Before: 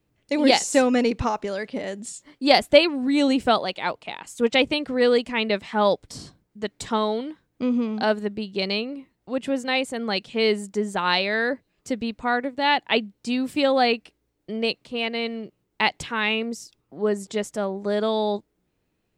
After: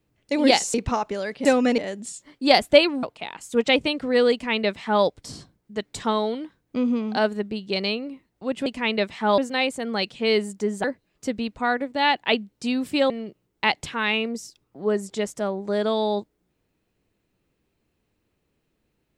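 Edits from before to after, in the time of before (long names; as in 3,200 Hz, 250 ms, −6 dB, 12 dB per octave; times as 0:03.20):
0:00.74–0:01.07: move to 0:01.78
0:03.03–0:03.89: remove
0:05.18–0:05.90: duplicate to 0:09.52
0:10.98–0:11.47: remove
0:13.73–0:15.27: remove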